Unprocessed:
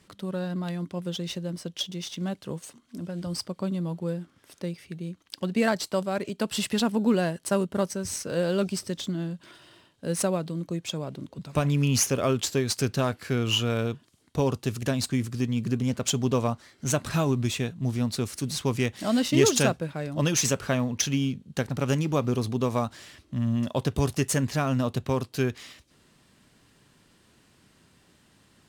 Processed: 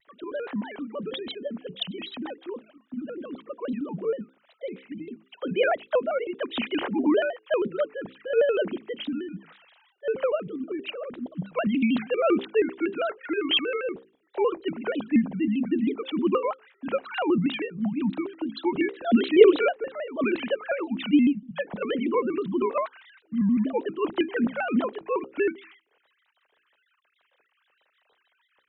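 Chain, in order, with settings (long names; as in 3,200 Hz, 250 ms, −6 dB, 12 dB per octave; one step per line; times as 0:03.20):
three sine waves on the formant tracks
mains-hum notches 60/120/180/240/300/360/420/480 Hz
pitch modulation by a square or saw wave square 6.3 Hz, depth 160 cents
level +1.5 dB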